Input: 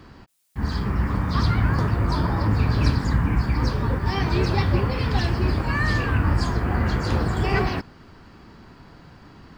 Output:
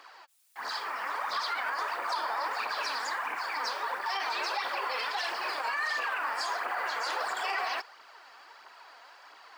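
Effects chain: phaser 1.5 Hz, delay 4.6 ms, feedback 49%; high-pass 660 Hz 24 dB/octave; peak limiter -23 dBFS, peak gain reduction 11 dB

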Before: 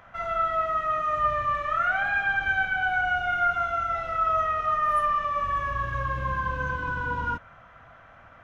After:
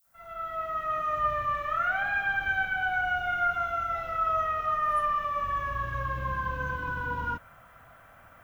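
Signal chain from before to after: fade-in on the opening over 1.00 s; added noise violet -66 dBFS; trim -3 dB

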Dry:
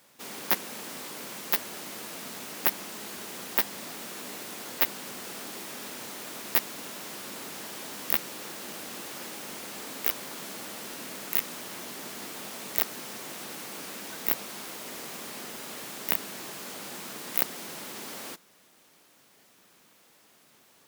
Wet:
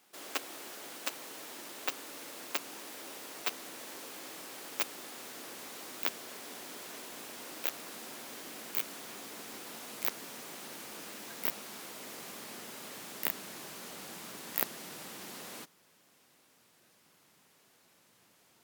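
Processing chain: gliding tape speed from 145% -> 79%; trim -5.5 dB

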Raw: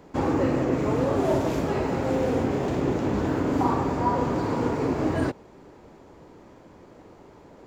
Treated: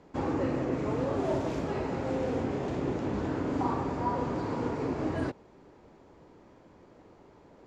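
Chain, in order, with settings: low-pass 7.2 kHz 12 dB/octave; trim -6.5 dB

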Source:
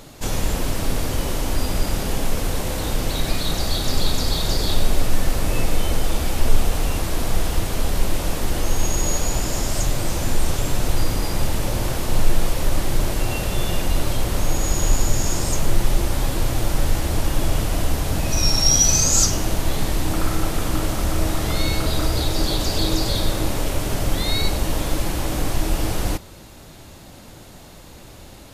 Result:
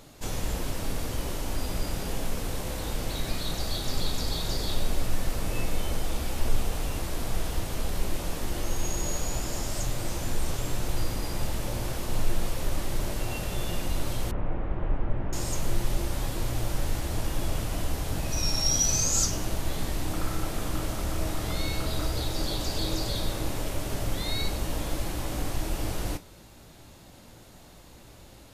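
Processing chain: feedback comb 58 Hz, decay 0.2 s, mix 60%; 14.31–15.33 s: Bessel low-pass 1.5 kHz, order 6; trim -5 dB

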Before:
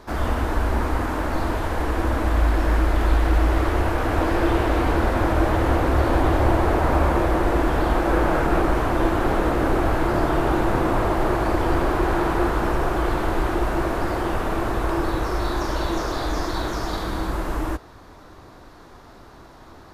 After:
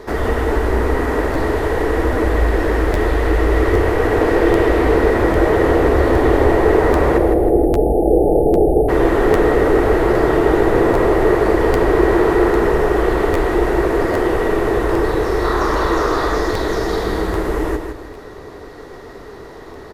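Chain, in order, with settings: 7.18–8.89 s: spectral selection erased 880–8700 Hz; 15.44–16.37 s: peaking EQ 1.2 kHz +9 dB 0.81 oct; in parallel at -1.5 dB: compression, threshold -30 dBFS, peak gain reduction 16 dB; on the sum: small resonant body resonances 430/1900 Hz, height 14 dB, ringing for 35 ms; on a send: feedback delay 159 ms, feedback 35%, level -7 dB; on the sum: crackling interface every 0.80 s, samples 512, repeat, from 0.53 s

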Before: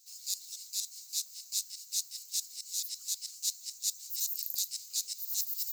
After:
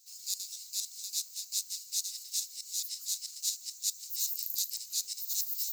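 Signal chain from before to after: chunks repeated in reverse 184 ms, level -7 dB

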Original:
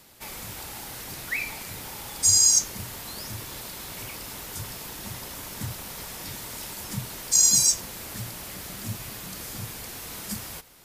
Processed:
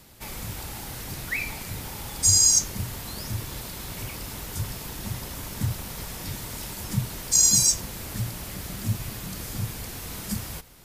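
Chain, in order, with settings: bass shelf 200 Hz +10.5 dB

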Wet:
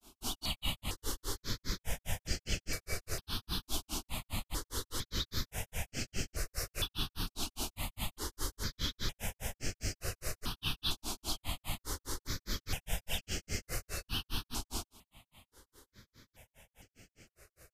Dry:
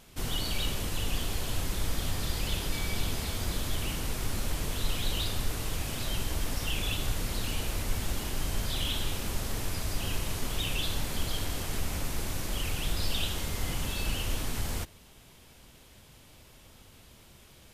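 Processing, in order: bass shelf 120 Hz -6.5 dB; granulator 154 ms, grains 4.9 per s, spray 13 ms, pitch spread up and down by 0 st; dynamic bell 5.1 kHz, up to +5 dB, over -58 dBFS, Q 1.3; stepped phaser 2.2 Hz 510–3700 Hz; trim +3 dB

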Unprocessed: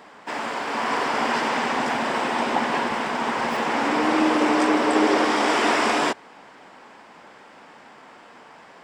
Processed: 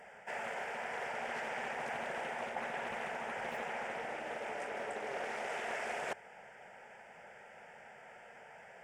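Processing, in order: reverse; compression 6:1, threshold -29 dBFS, peak gain reduction 13.5 dB; reverse; static phaser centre 1.1 kHz, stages 6; loudspeaker Doppler distortion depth 0.27 ms; trim -4.5 dB

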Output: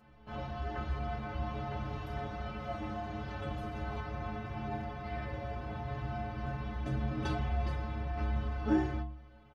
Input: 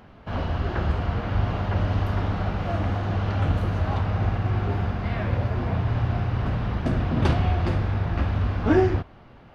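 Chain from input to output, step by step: resampled via 32 kHz; inharmonic resonator 64 Hz, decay 0.78 s, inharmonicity 0.03; trim +1.5 dB

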